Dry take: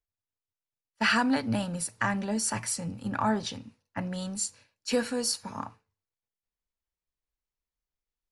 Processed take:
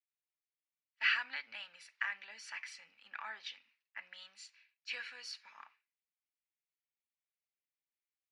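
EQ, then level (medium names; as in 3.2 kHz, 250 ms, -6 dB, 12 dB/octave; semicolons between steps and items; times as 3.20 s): resonant high-pass 2.2 kHz, resonance Q 2.5; distance through air 240 m; -5.5 dB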